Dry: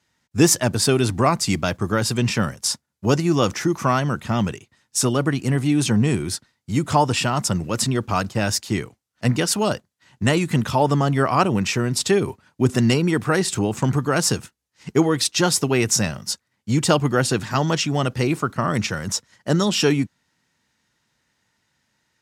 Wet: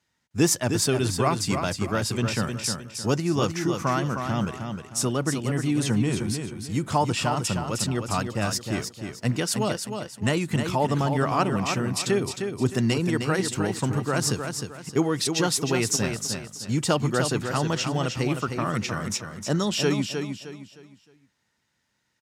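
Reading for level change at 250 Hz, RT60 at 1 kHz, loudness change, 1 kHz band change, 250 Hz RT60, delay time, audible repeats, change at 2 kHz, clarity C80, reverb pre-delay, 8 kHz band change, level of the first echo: -4.5 dB, none, -4.5 dB, -4.5 dB, none, 0.309 s, 3, -4.5 dB, none, none, -4.5 dB, -6.5 dB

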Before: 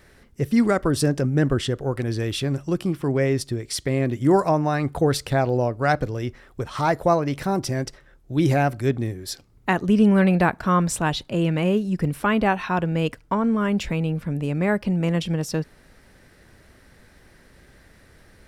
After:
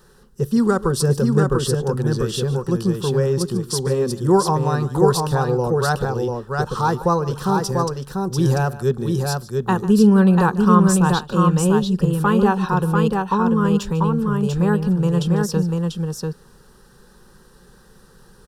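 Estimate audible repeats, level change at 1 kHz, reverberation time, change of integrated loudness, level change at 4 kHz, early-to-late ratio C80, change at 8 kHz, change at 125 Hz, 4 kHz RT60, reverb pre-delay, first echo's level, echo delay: 2, +4.0 dB, none, +3.5 dB, +2.0 dB, none, +5.5 dB, +5.0 dB, none, none, -17.0 dB, 0.147 s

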